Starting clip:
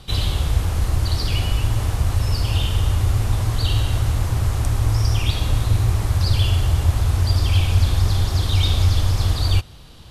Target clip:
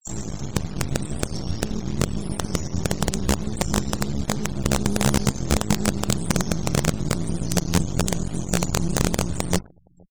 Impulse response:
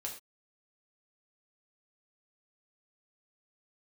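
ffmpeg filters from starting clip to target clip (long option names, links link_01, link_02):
-filter_complex "[0:a]firequalizer=gain_entry='entry(350,0);entry(1200,-23);entry(1800,-1)':delay=0.05:min_phase=1,asetrate=83250,aresample=44100,atempo=0.529732,bandreject=frequency=50:width_type=h:width=6,bandreject=frequency=100:width_type=h:width=6,bandreject=frequency=150:width_type=h:width=6,asplit=2[link_01][link_02];[link_02]adelay=15,volume=-13dB[link_03];[link_01][link_03]amix=inputs=2:normalize=0,acrossover=split=3500[link_04][link_05];[link_04]acrusher=bits=3:dc=4:mix=0:aa=0.000001[link_06];[link_05]acompressor=threshold=-43dB:ratio=16[link_07];[link_06][link_07]amix=inputs=2:normalize=0,asplit=2[link_08][link_09];[link_09]adelay=466.5,volume=-26dB,highshelf=frequency=4000:gain=-10.5[link_10];[link_08][link_10]amix=inputs=2:normalize=0,afftfilt=real='re*gte(hypot(re,im),0.0112)':imag='im*gte(hypot(re,im),0.0112)':win_size=1024:overlap=0.75,equalizer=frequency=7400:width_type=o:width=1.2:gain=12,asplit=2[link_11][link_12];[link_12]aeval=exprs='sgn(val(0))*max(abs(val(0))-0.0335,0)':channel_layout=same,volume=-7dB[link_13];[link_11][link_13]amix=inputs=2:normalize=0,volume=-6.5dB"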